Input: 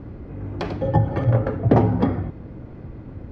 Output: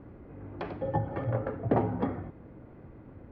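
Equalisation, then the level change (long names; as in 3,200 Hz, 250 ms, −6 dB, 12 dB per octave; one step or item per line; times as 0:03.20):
low-pass filter 2,500 Hz 12 dB per octave
low-shelf EQ 220 Hz −8.5 dB
−7.0 dB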